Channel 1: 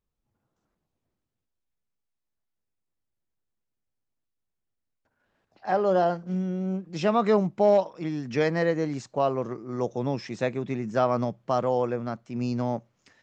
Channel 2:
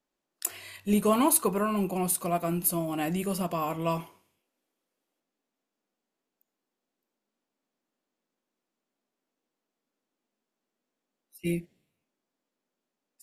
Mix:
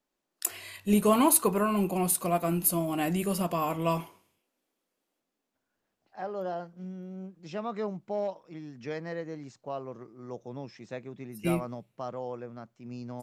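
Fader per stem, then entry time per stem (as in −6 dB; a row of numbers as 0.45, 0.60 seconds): −12.0, +1.0 decibels; 0.50, 0.00 seconds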